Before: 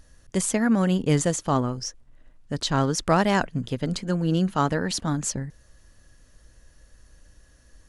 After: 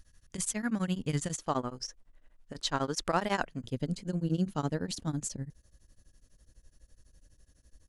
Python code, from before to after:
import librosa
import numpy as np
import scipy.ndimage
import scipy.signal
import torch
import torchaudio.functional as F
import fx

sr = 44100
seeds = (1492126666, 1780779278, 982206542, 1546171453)

y = fx.peak_eq(x, sr, hz=fx.steps((0.0, 530.0), (1.38, 110.0), (3.64, 1400.0)), db=-8.5, octaves=2.5)
y = y * np.abs(np.cos(np.pi * 12.0 * np.arange(len(y)) / sr))
y = F.gain(torch.from_numpy(y), -3.5).numpy()